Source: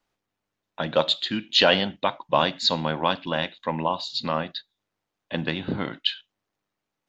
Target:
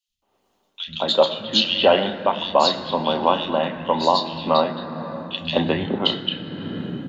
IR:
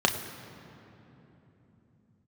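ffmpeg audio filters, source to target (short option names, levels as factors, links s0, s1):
-filter_complex "[0:a]acrossover=split=150|2700[s0][s1][s2];[s0]adelay=80[s3];[s1]adelay=220[s4];[s3][s4][s2]amix=inputs=3:normalize=0,asplit=2[s5][s6];[1:a]atrim=start_sample=2205,lowshelf=f=100:g=-6.5[s7];[s6][s7]afir=irnorm=-1:irlink=0,volume=0.266[s8];[s5][s8]amix=inputs=2:normalize=0,dynaudnorm=f=100:g=7:m=5.96,volume=0.75"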